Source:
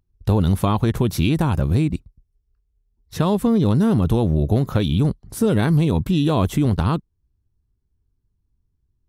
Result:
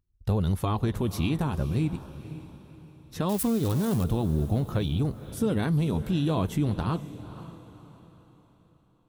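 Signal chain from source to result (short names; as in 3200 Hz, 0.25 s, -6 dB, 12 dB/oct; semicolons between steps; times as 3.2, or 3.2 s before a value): 3.29–4.04 switching spikes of -16.5 dBFS; flange 0.23 Hz, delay 0.7 ms, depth 5.8 ms, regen -63%; diffused feedback echo 0.511 s, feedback 41%, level -14 dB; gain -4 dB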